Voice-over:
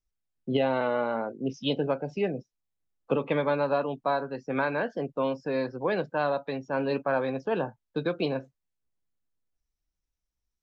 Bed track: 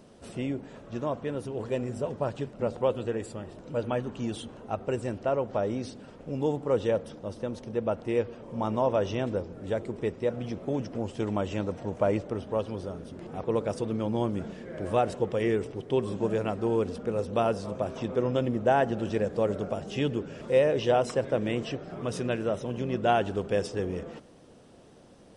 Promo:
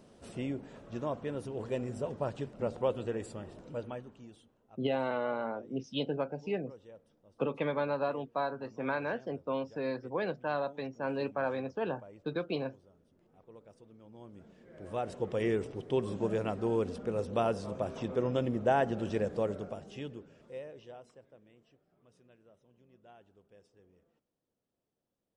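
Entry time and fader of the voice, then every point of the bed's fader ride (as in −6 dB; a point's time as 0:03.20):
4.30 s, −6.0 dB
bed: 0:03.61 −4.5 dB
0:04.56 −26.5 dB
0:14.01 −26.5 dB
0:15.38 −4 dB
0:19.33 −4 dB
0:21.49 −33.5 dB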